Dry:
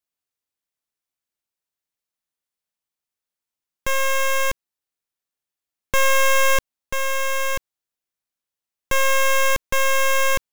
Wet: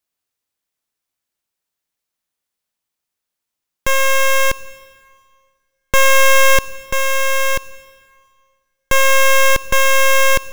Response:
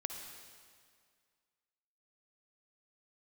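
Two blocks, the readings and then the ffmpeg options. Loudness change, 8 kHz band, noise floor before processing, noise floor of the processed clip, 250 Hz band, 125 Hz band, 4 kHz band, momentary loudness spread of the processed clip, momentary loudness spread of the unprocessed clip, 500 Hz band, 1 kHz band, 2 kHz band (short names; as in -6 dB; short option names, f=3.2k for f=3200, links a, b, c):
+6.5 dB, +6.5 dB, under -85 dBFS, -82 dBFS, +6.5 dB, +6.5 dB, +7.0 dB, 9 LU, 9 LU, +6.5 dB, +5.5 dB, +6.5 dB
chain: -filter_complex "[0:a]asplit=2[a][b];[1:a]atrim=start_sample=2205[c];[b][c]afir=irnorm=-1:irlink=0,volume=-10.5dB[d];[a][d]amix=inputs=2:normalize=0,volume=4.5dB"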